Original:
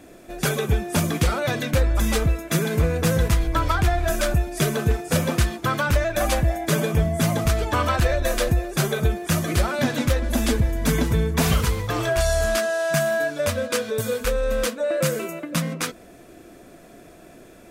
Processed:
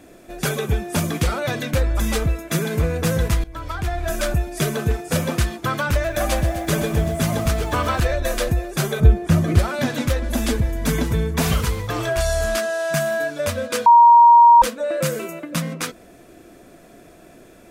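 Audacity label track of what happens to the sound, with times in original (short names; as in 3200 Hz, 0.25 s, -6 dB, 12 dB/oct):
3.440000	4.250000	fade in, from -17 dB
5.910000	8.000000	lo-fi delay 0.127 s, feedback 80%, word length 7-bit, level -12.5 dB
9.000000	9.590000	tilt -2.5 dB/oct
13.860000	14.620000	bleep 943 Hz -6 dBFS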